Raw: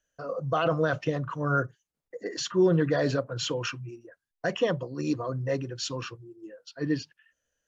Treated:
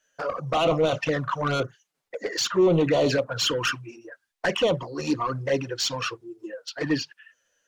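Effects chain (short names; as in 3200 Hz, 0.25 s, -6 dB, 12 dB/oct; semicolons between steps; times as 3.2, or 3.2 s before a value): overdrive pedal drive 19 dB, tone 6400 Hz, clips at -12.5 dBFS; envelope flanger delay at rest 11.2 ms, full sweep at -18 dBFS; gain +1.5 dB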